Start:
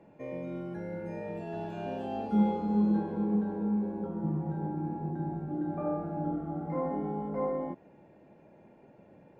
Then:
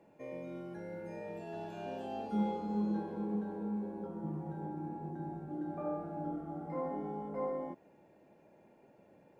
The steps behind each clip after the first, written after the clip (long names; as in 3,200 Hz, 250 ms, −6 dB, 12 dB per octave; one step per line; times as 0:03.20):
bass and treble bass −5 dB, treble +7 dB
level −4.5 dB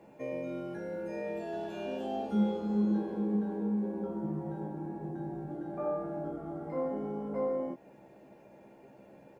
in parallel at −2 dB: downward compressor, threshold −47 dBFS, peak gain reduction 17.5 dB
on the sum: double-tracking delay 15 ms −5 dB
level +1 dB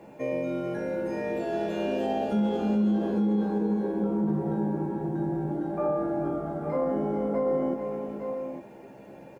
on a send: multi-tap delay 437/857 ms −9.5/−8.5 dB
on the sum: brickwall limiter −26 dBFS, peak gain reduction 7.5 dB
level +7.5 dB